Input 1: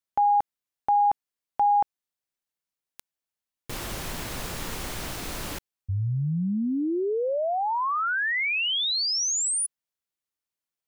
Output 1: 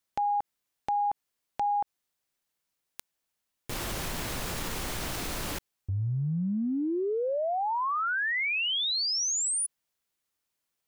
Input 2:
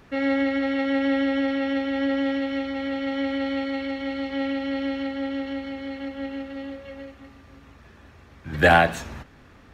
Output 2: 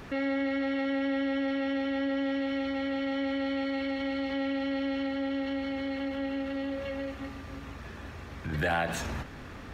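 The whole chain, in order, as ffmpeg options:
ffmpeg -i in.wav -af "acompressor=threshold=-38dB:ratio=3:attack=0.82:release=87:knee=1:detection=peak,volume=7dB" out.wav

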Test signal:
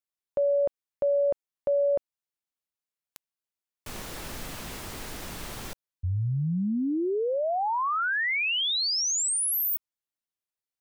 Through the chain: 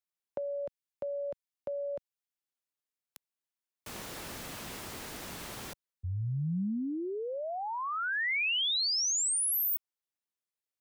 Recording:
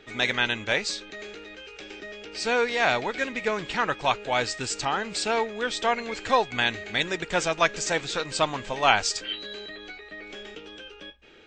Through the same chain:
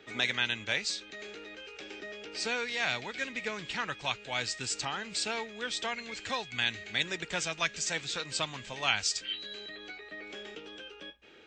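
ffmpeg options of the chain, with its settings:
ffmpeg -i in.wav -filter_complex "[0:a]highpass=frequency=110:poles=1,acrossover=split=190|1800[link_01][link_02][link_03];[link_02]acompressor=threshold=-32dB:ratio=6:release=960:knee=1:detection=rms[link_04];[link_01][link_04][link_03]amix=inputs=3:normalize=0,volume=-3dB" out.wav

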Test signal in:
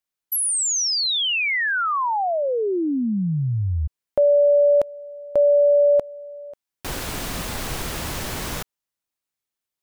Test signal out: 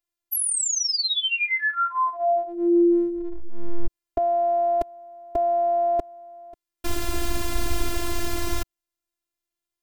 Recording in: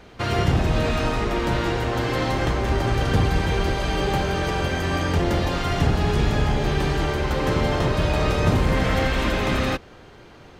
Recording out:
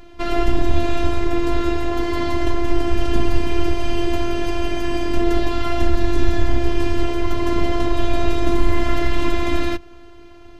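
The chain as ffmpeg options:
ffmpeg -i in.wav -af "lowshelf=frequency=270:gain=12,afftfilt=real='hypot(re,im)*cos(PI*b)':imag='0':win_size=512:overlap=0.75,volume=1.5dB" out.wav

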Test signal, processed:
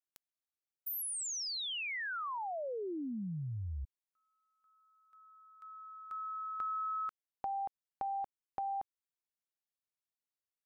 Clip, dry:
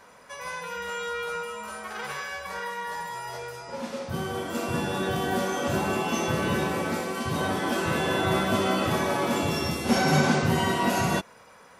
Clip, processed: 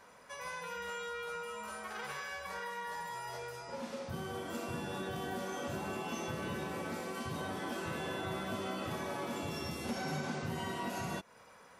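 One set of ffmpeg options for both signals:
ffmpeg -i in.wav -af "acompressor=threshold=-32dB:ratio=3,volume=-6dB" out.wav

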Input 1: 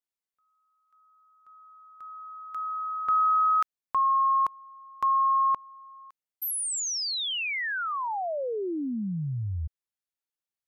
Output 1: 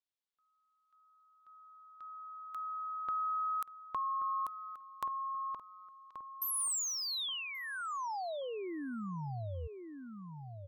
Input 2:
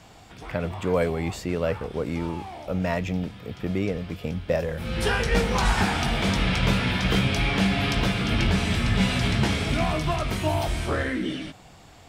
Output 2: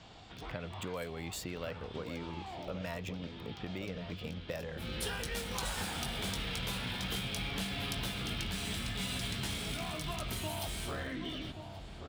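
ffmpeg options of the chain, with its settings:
ffmpeg -i in.wav -filter_complex "[0:a]acrossover=split=1100|7500[link_01][link_02][link_03];[link_01]acompressor=threshold=-34dB:ratio=6[link_04];[link_02]acompressor=threshold=-44dB:ratio=2[link_05];[link_03]acompressor=threshold=-45dB:ratio=4[link_06];[link_04][link_05][link_06]amix=inputs=3:normalize=0,acrossover=split=5400[link_07][link_08];[link_08]aeval=exprs='sgn(val(0))*max(abs(val(0))-0.00211,0)':channel_layout=same[link_09];[link_07][link_09]amix=inputs=2:normalize=0,aexciter=amount=2.7:drive=2.4:freq=3100,asplit=2[link_10][link_11];[link_11]adelay=1130,lowpass=frequency=1000:poles=1,volume=-7dB,asplit=2[link_12][link_13];[link_13]adelay=1130,lowpass=frequency=1000:poles=1,volume=0.44,asplit=2[link_14][link_15];[link_15]adelay=1130,lowpass=frequency=1000:poles=1,volume=0.44,asplit=2[link_16][link_17];[link_17]adelay=1130,lowpass=frequency=1000:poles=1,volume=0.44,asplit=2[link_18][link_19];[link_19]adelay=1130,lowpass=frequency=1000:poles=1,volume=0.44[link_20];[link_10][link_12][link_14][link_16][link_18][link_20]amix=inputs=6:normalize=0,volume=-5dB" out.wav

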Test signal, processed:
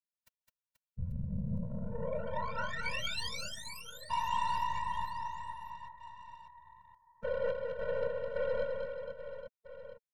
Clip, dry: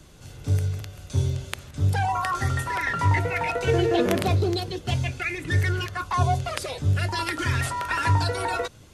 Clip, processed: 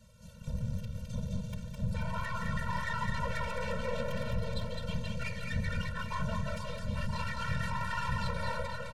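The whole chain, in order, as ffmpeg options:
ffmpeg -i in.wav -filter_complex "[0:a]acrossover=split=620|4600[link_01][link_02][link_03];[link_03]acompressor=threshold=-48dB:ratio=6[link_04];[link_01][link_02][link_04]amix=inputs=3:normalize=0,asoftclip=type=tanh:threshold=-23dB,afftfilt=real='hypot(re,im)*cos(2*PI*random(0))':imag='hypot(re,im)*sin(2*PI*random(1))':win_size=512:overlap=0.75,aeval=exprs='0.0944*(cos(1*acos(clip(val(0)/0.0944,-1,1)))-cos(1*PI/2))+0.00841*(cos(8*acos(clip(val(0)/0.0944,-1,1)))-cos(8*PI/2))':channel_layout=same,aecho=1:1:210|483|837.9|1299|1899:0.631|0.398|0.251|0.158|0.1,afftfilt=real='re*eq(mod(floor(b*sr/1024/220),2),0)':imag='im*eq(mod(floor(b*sr/1024/220),2),0)':win_size=1024:overlap=0.75,volume=-1.5dB" out.wav

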